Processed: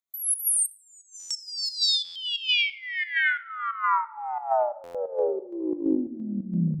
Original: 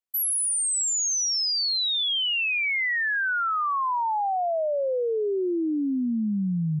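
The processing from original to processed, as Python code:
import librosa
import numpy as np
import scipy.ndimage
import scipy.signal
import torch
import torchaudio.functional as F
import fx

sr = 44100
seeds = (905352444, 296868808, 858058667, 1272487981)

y = fx.spec_ripple(x, sr, per_octave=1.2, drift_hz=0.35, depth_db=15)
y = fx.echo_feedback(y, sr, ms=252, feedback_pct=48, wet_db=-6.5)
y = fx.over_compress(y, sr, threshold_db=-26.0, ratio=-0.5)
y = fx.spacing_loss(y, sr, db_at_10k=30, at=(0.66, 1.29))
y = fx.volume_shaper(y, sr, bpm=89, per_beat=2, depth_db=-13, release_ms=127.0, shape='slow start')
y = fx.room_shoebox(y, sr, seeds[0], volume_m3=3200.0, walls='furnished', distance_m=0.69)
y = fx.buffer_glitch(y, sr, at_s=(1.19, 2.04, 4.83), block=512, repeats=9)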